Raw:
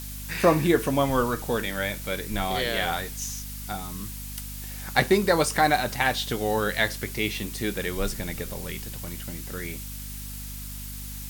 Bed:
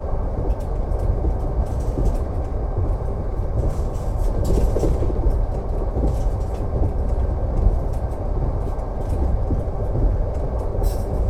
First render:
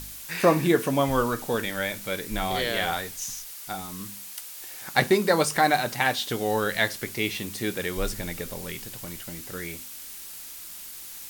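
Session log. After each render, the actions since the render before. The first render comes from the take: de-hum 50 Hz, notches 5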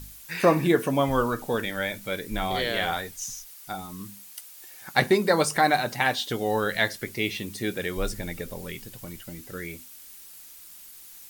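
noise reduction 8 dB, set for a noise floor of -41 dBFS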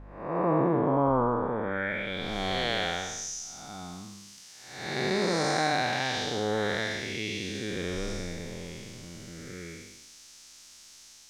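spectral blur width 346 ms; low-pass sweep 960 Hz -> 5.9 kHz, 1.61–2.37 s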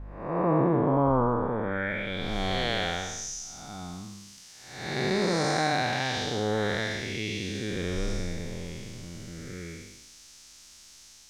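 bass shelf 140 Hz +7.5 dB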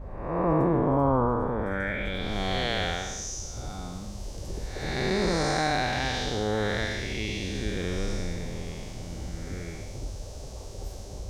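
add bed -17 dB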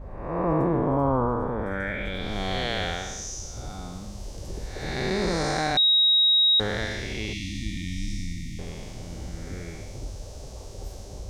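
5.77–6.60 s: bleep 3.8 kHz -16 dBFS; 7.33–8.59 s: brick-wall FIR band-stop 330–1800 Hz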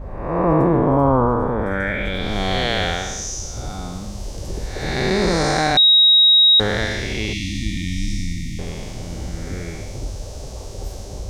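trim +7.5 dB

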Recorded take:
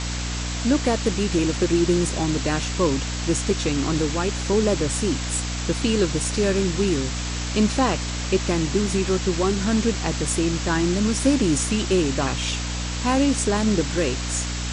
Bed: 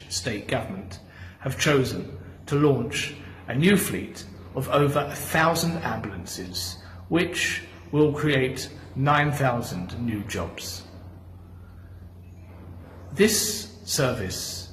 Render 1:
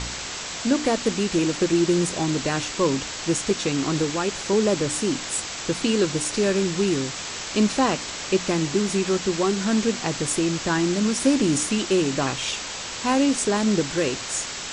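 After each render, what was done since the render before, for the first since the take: de-hum 60 Hz, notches 5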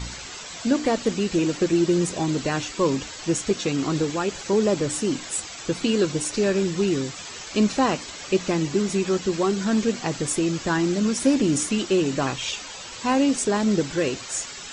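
noise reduction 10 dB, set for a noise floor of -33 dBFS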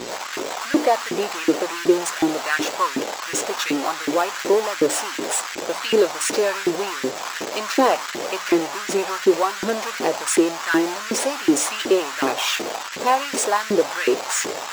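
in parallel at -4 dB: Schmitt trigger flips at -31 dBFS; on the sum: LFO high-pass saw up 2.7 Hz 320–1900 Hz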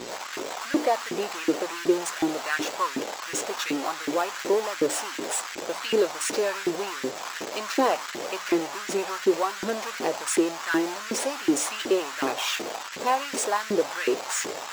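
trim -5.5 dB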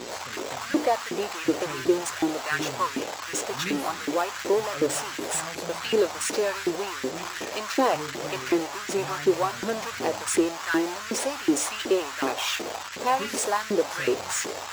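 add bed -17.5 dB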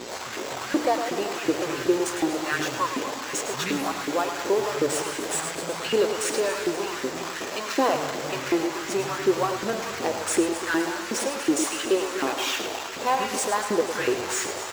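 backward echo that repeats 123 ms, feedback 70%, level -11 dB; delay 106 ms -9.5 dB

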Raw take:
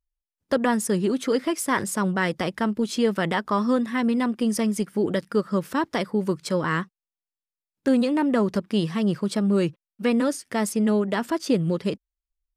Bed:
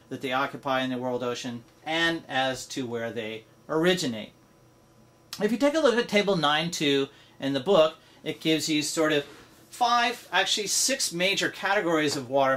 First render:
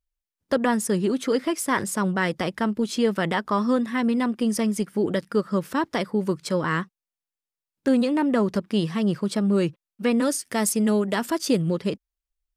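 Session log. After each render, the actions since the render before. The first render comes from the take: 10.22–11.62 s: treble shelf 5 kHz +9.5 dB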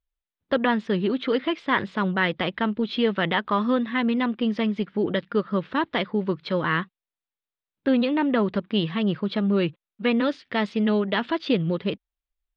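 dynamic bell 3 kHz, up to +6 dB, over -42 dBFS, Q 0.98; Chebyshev low-pass 3.8 kHz, order 4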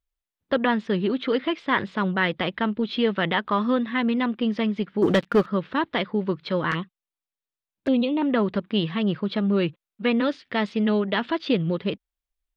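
5.02–5.46 s: waveshaping leveller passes 2; 6.71–8.22 s: touch-sensitive flanger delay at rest 9.7 ms, full sweep at -21 dBFS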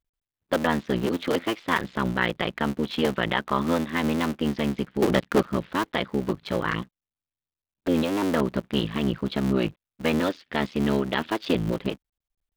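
cycle switcher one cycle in 3, muted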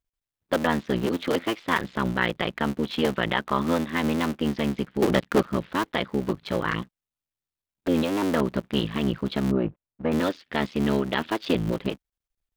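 9.51–10.12 s: Bessel low-pass 970 Hz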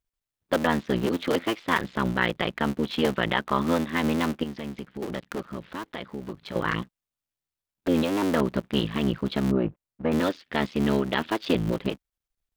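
4.43–6.56 s: compression 2:1, threshold -38 dBFS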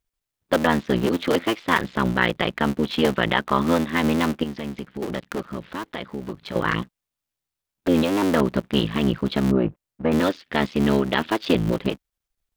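trim +4 dB

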